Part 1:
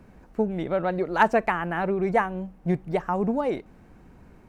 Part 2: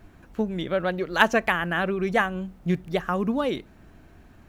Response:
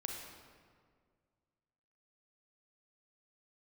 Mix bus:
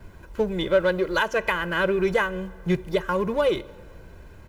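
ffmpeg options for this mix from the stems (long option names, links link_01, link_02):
-filter_complex "[0:a]acrusher=bits=5:mode=log:mix=0:aa=0.000001,asoftclip=type=hard:threshold=-32dB,volume=-3.5dB[link_01];[1:a]aecho=1:1:2:0.95,adelay=2.7,volume=0.5dB,asplit=2[link_02][link_03];[link_03]volume=-17dB[link_04];[2:a]atrim=start_sample=2205[link_05];[link_04][link_05]afir=irnorm=-1:irlink=0[link_06];[link_01][link_02][link_06]amix=inputs=3:normalize=0,alimiter=limit=-11dB:level=0:latency=1:release=438"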